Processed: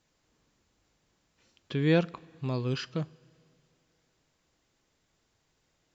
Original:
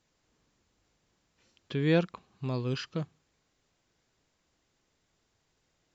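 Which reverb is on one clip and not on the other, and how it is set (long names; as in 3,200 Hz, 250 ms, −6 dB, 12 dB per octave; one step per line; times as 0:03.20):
coupled-rooms reverb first 0.23 s, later 2.7 s, from −18 dB, DRR 17 dB
level +1 dB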